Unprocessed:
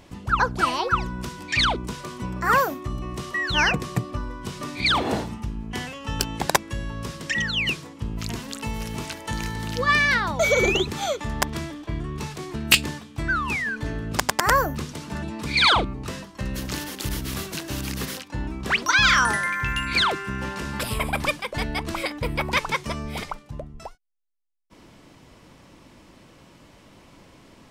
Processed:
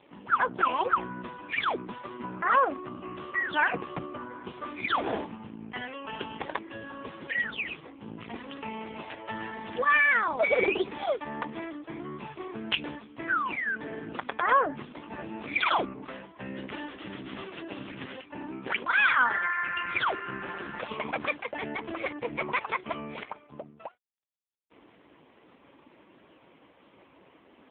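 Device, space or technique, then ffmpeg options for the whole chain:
telephone: -filter_complex "[0:a]asettb=1/sr,asplit=3[a][b][c];[a]atrim=end=9.704[d];[b]atrim=start=9.7:end=10.44,asetpts=PTS-STARTPTS,afade=t=in:d=0.004:c=qsin,afade=t=out:st=0.736:d=0.004:c=qsin,adynamicequalizer=threshold=0.00501:dfrequency=8000:dqfactor=1.3:tfrequency=8000:tqfactor=1.3:attack=5:release=100:ratio=0.375:range=1.5:mode=cutabove:tftype=bell[e];[c]atrim=start=10.436[f];[d][e]acrossfade=d=0.004:c1=hsin:c2=qsin[g];[g][f]acrossfade=d=0.004:c1=qsin:c2=hsin,highpass=270,lowpass=3.5k,asoftclip=type=tanh:threshold=-12dB" -ar 8000 -c:a libopencore_amrnb -b:a 4750

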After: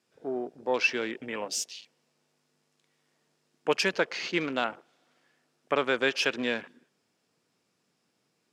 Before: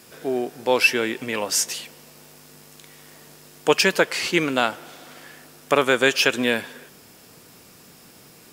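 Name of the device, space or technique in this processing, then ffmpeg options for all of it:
over-cleaned archive recording: -af "highpass=130,lowpass=7.3k,afwtdn=0.02,volume=-8dB"

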